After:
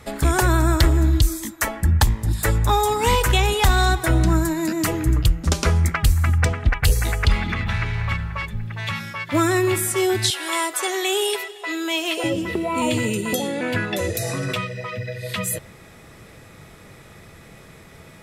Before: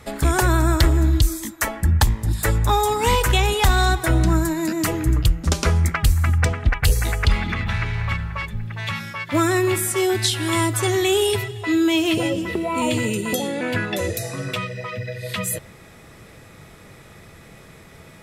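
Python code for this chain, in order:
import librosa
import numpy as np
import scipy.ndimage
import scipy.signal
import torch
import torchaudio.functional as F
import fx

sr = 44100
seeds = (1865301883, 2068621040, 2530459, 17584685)

y = fx.highpass(x, sr, hz=430.0, slope=24, at=(10.3, 12.24))
y = fx.env_flatten(y, sr, amount_pct=70, at=(14.15, 14.61))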